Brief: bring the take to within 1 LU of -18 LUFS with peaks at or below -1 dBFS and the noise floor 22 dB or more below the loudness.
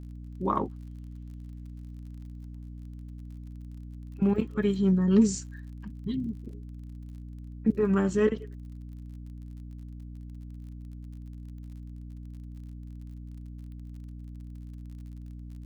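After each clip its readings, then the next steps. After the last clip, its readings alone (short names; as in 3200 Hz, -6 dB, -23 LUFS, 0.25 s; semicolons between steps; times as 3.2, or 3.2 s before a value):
ticks 41/s; hum 60 Hz; harmonics up to 300 Hz; hum level -39 dBFS; loudness -27.0 LUFS; peak -11.0 dBFS; loudness target -18.0 LUFS
-> de-click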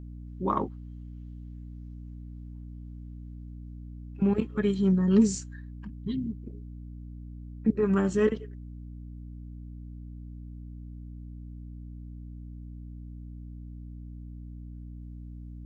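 ticks 0/s; hum 60 Hz; harmonics up to 300 Hz; hum level -39 dBFS
-> notches 60/120/180/240/300 Hz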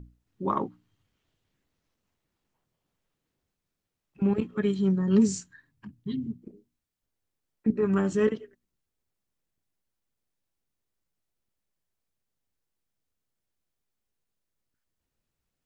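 hum none; loudness -27.5 LUFS; peak -11.5 dBFS; loudness target -18.0 LUFS
-> gain +9.5 dB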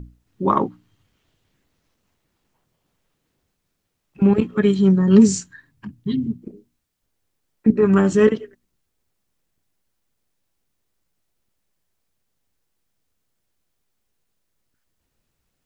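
loudness -18.0 LUFS; peak -2.0 dBFS; noise floor -75 dBFS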